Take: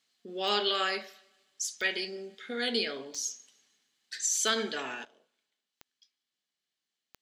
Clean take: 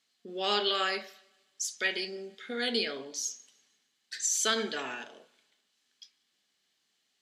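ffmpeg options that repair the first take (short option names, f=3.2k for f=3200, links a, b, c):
-af "adeclick=t=4,asetnsamples=n=441:p=0,asendcmd='5.05 volume volume 12dB',volume=0dB"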